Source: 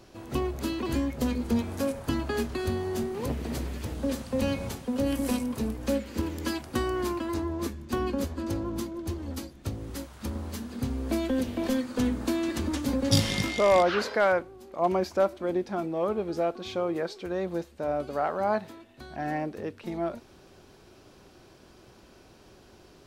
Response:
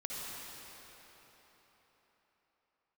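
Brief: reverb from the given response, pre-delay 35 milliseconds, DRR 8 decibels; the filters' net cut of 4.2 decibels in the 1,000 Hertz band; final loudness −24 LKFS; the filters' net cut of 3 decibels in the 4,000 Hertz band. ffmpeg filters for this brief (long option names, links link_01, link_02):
-filter_complex "[0:a]equalizer=frequency=1000:width_type=o:gain=-6,equalizer=frequency=4000:width_type=o:gain=-3.5,asplit=2[link_01][link_02];[1:a]atrim=start_sample=2205,adelay=35[link_03];[link_02][link_03]afir=irnorm=-1:irlink=0,volume=-10dB[link_04];[link_01][link_04]amix=inputs=2:normalize=0,volume=6.5dB"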